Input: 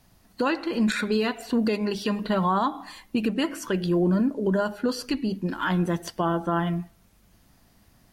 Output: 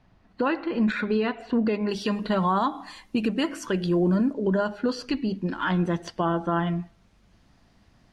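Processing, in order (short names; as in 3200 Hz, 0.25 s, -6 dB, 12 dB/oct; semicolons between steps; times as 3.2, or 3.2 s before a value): LPF 2600 Hz 12 dB/oct, from 1.89 s 8500 Hz, from 4.33 s 5100 Hz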